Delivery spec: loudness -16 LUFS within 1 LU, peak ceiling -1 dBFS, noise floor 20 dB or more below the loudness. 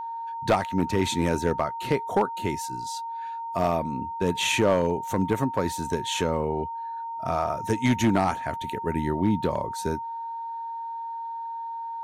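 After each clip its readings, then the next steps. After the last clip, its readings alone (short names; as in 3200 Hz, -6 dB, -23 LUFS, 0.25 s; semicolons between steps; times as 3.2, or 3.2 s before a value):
clipped 0.5%; flat tops at -14.0 dBFS; steady tone 920 Hz; tone level -31 dBFS; loudness -27.0 LUFS; peak -14.0 dBFS; loudness target -16.0 LUFS
-> clip repair -14 dBFS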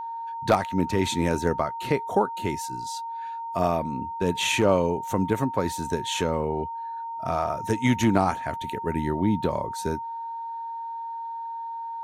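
clipped 0.0%; steady tone 920 Hz; tone level -31 dBFS
-> notch 920 Hz, Q 30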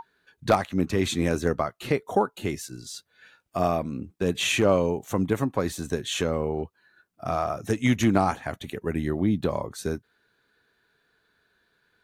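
steady tone none; loudness -26.5 LUFS; peak -7.0 dBFS; loudness target -16.0 LUFS
-> gain +10.5 dB; limiter -1 dBFS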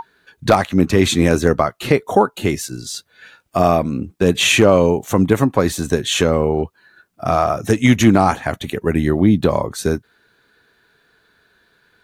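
loudness -16.5 LUFS; peak -1.0 dBFS; noise floor -61 dBFS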